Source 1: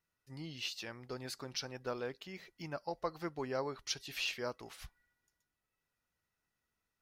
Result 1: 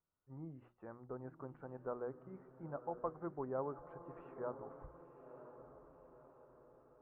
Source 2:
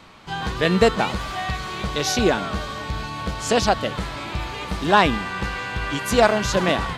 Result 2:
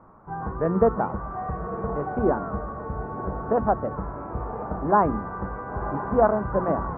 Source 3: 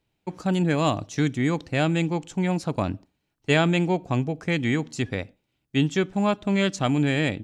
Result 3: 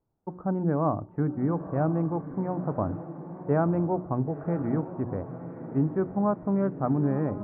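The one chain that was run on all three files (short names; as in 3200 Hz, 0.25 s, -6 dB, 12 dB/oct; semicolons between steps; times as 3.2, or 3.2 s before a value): steep low-pass 1300 Hz 36 dB/oct; notches 60/120/180/240/300/360 Hz; on a send: diffused feedback echo 1.014 s, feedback 50%, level -11.5 dB; on the sum: gain -2.5 dB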